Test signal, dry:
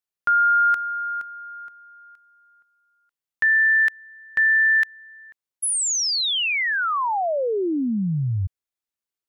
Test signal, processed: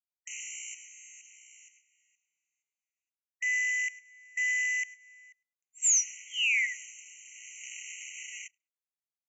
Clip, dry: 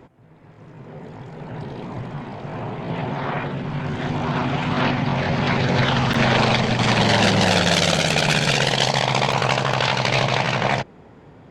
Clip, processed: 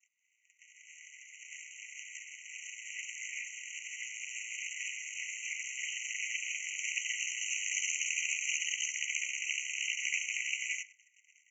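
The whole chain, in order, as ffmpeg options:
-filter_complex "[0:a]acrossover=split=360|1700[a][b][c];[b]acompressor=threshold=-39dB:ratio=3:attack=97:release=335:knee=2.83:detection=peak[d];[a][d][c]amix=inputs=3:normalize=0,asplit=2[e][f];[f]adelay=105,lowpass=f=4.5k:p=1,volume=-19dB,asplit=2[g][h];[h]adelay=105,lowpass=f=4.5k:p=1,volume=0.19[i];[e][g][i]amix=inputs=3:normalize=0,acrossover=split=120|2900[j][k][l];[j]acrusher=bits=5:mix=0:aa=0.5[m];[k]asoftclip=type=hard:threshold=-17dB[n];[m][n][l]amix=inputs=3:normalize=0,equalizer=f=3.7k:w=0.79:g=-8.5,tremolo=f=230:d=0.919,agate=range=-11dB:threshold=-54dB:ratio=16:release=40:detection=peak,aresample=16000,acrusher=bits=3:mode=log:mix=0:aa=0.000001,aresample=44100,adynamicequalizer=threshold=0.00794:dfrequency=1400:dqfactor=0.73:tfrequency=1400:tqfactor=0.73:attack=5:release=100:ratio=0.375:range=3.5:mode=cutabove:tftype=bell,alimiter=limit=-20.5dB:level=0:latency=1:release=45,asuperstop=centerf=4200:order=20:qfactor=1.5,afftfilt=real='re*eq(mod(floor(b*sr/1024/1900),2),1)':imag='im*eq(mod(floor(b*sr/1024/1900),2),1)':win_size=1024:overlap=0.75,volume=8.5dB"

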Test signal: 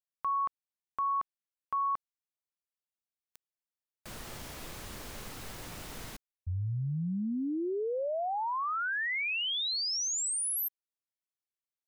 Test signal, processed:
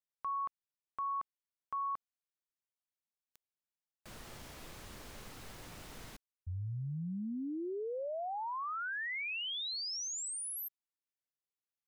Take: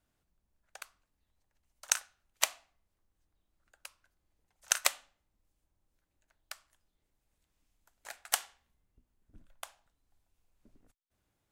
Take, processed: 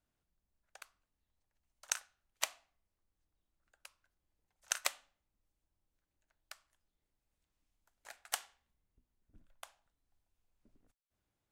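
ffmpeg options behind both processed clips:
-af "highshelf=f=9k:g=-4,volume=-6dB"

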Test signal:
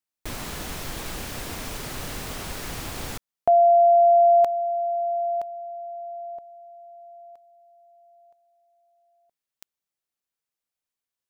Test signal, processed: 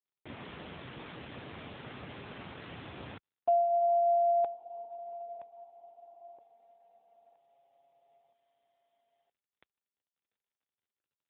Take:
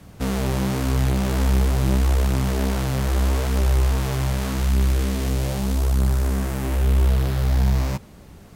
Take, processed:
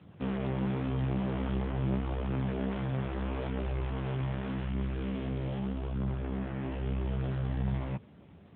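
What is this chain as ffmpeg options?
-af "volume=-7.5dB" -ar 8000 -c:a libopencore_amrnb -b:a 7950

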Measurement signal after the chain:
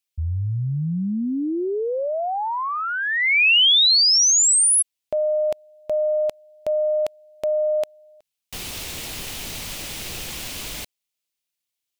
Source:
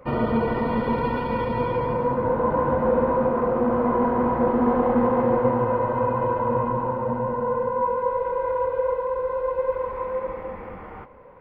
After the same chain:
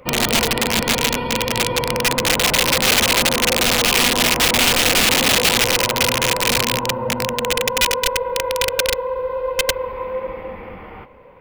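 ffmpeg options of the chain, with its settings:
-af "aeval=exprs='0.398*(cos(1*acos(clip(val(0)/0.398,-1,1)))-cos(1*PI/2))+0.0126*(cos(2*acos(clip(val(0)/0.398,-1,1)))-cos(2*PI/2))+0.00316*(cos(3*acos(clip(val(0)/0.398,-1,1)))-cos(3*PI/2))+0.00562*(cos(4*acos(clip(val(0)/0.398,-1,1)))-cos(4*PI/2))':c=same,aeval=exprs='(mod(6.68*val(0)+1,2)-1)/6.68':c=same,highshelf=f=2k:t=q:w=1.5:g=7,volume=3dB"

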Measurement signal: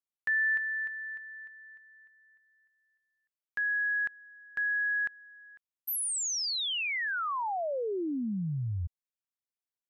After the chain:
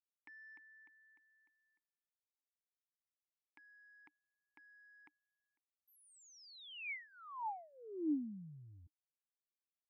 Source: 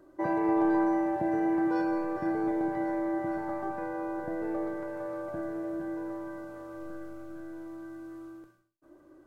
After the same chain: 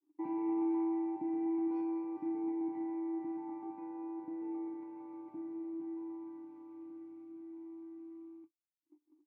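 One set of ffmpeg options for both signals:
-filter_complex "[0:a]asoftclip=type=tanh:threshold=-18.5dB,agate=range=-33dB:threshold=-50dB:ratio=3:release=71:detection=rms,asplit=3[a][b][c];[a]bandpass=f=300:t=q:w=8,volume=0dB[d];[b]bandpass=f=870:t=q:w=8,volume=-6dB[e];[c]bandpass=f=2.24k:t=q:w=8,volume=-9dB[f];[d][e][f]amix=inputs=3:normalize=0"

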